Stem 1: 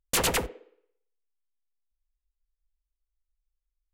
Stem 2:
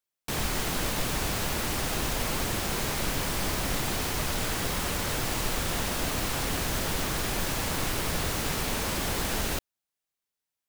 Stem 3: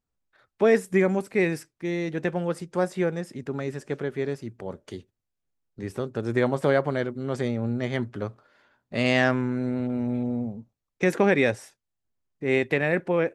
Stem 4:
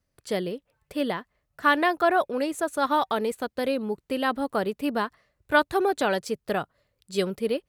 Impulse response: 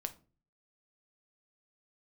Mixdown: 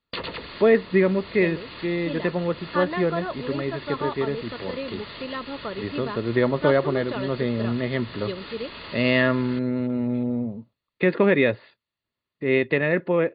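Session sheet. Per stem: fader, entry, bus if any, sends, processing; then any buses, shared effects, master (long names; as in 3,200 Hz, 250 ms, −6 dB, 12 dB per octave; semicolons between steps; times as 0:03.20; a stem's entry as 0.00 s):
−0.5 dB, 0.00 s, no send, automatic ducking −16 dB, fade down 0.75 s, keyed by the third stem
−5.0 dB, 0.00 s, no send, wave folding −29 dBFS
+2.5 dB, 0.00 s, no send, no processing
−6.5 dB, 1.10 s, no send, no processing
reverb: not used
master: linear-phase brick-wall low-pass 4,800 Hz; notch comb filter 770 Hz; one half of a high-frequency compander encoder only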